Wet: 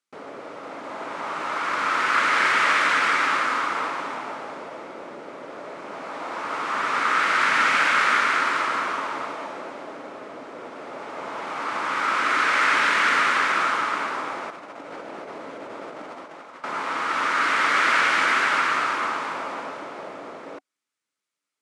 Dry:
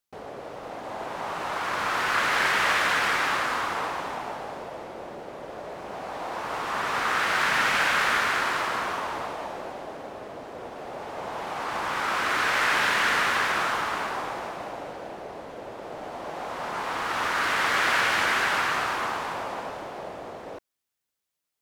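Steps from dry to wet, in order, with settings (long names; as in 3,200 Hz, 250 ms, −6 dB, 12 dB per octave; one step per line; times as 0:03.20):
notch filter 750 Hz, Q 12
0:14.50–0:16.64: compressor whose output falls as the input rises −39 dBFS, ratio −0.5
loudspeaker in its box 180–9,600 Hz, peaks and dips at 280 Hz +6 dB, 1,300 Hz +7 dB, 2,200 Hz +5 dB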